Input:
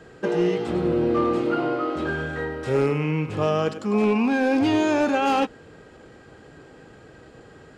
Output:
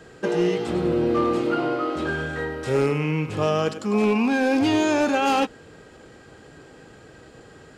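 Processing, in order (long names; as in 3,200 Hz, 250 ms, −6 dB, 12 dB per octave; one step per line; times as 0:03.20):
high-shelf EQ 3,900 Hz +7 dB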